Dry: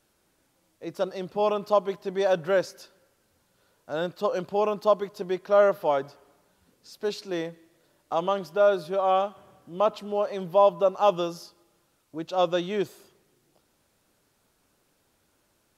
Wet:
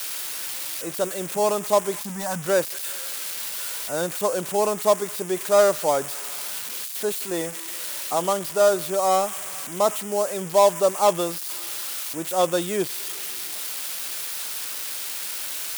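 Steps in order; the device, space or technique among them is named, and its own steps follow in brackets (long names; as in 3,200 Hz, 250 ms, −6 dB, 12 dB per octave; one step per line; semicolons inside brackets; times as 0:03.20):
0:01.99–0:02.46: drawn EQ curve 120 Hz 0 dB, 220 Hz +5 dB, 430 Hz −23 dB, 880 Hz +2 dB, 3,600 Hz −13 dB, 6,500 Hz +10 dB
budget class-D amplifier (gap after every zero crossing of 0.12 ms; spike at every zero crossing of −17.5 dBFS)
level +2.5 dB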